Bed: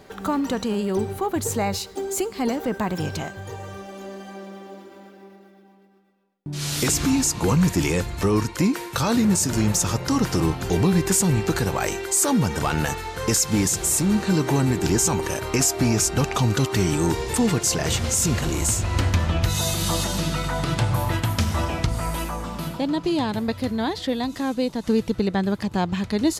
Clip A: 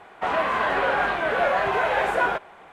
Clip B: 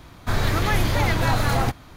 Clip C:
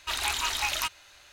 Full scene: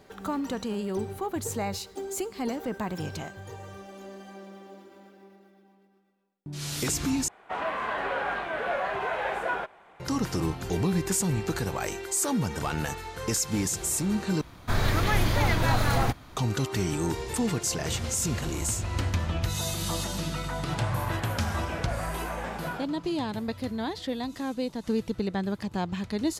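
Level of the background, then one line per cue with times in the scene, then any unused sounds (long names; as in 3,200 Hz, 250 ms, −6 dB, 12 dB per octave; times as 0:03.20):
bed −7 dB
0:07.28: overwrite with A −7.5 dB
0:14.41: overwrite with B −3 dB
0:20.47: mix in A −14.5 dB
not used: C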